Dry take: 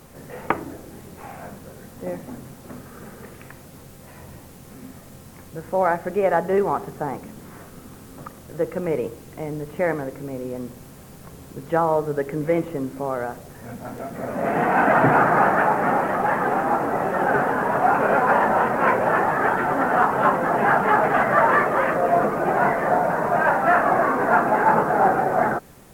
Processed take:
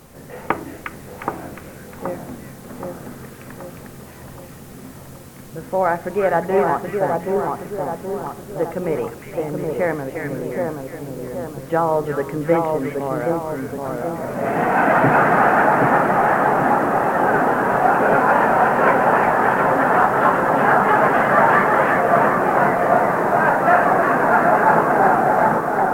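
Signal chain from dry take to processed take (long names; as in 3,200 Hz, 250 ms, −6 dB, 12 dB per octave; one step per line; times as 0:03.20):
on a send: echo with a time of its own for lows and highs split 1,400 Hz, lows 775 ms, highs 357 ms, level −3 dB
on the sum: level +1.5 dB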